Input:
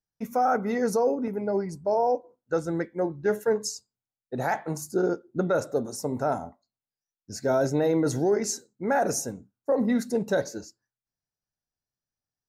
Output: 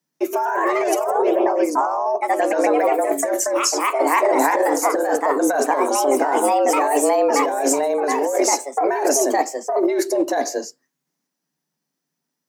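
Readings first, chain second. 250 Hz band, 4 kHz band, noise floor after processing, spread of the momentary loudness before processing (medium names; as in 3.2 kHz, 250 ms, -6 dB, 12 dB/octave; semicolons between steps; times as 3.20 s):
+5.5 dB, +11.0 dB, -80 dBFS, 8 LU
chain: ever faster or slower copies 145 ms, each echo +2 st, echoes 3; compressor with a negative ratio -27 dBFS, ratio -1; frequency shift +140 Hz; trim +9 dB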